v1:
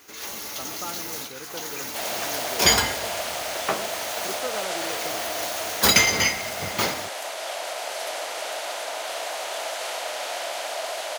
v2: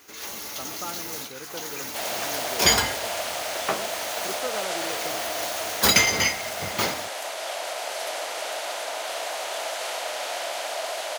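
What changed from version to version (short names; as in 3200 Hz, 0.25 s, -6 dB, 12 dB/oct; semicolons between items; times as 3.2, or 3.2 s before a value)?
first sound: send -6.0 dB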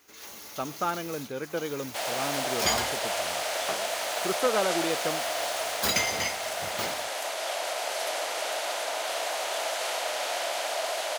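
speech +7.5 dB; first sound -8.5 dB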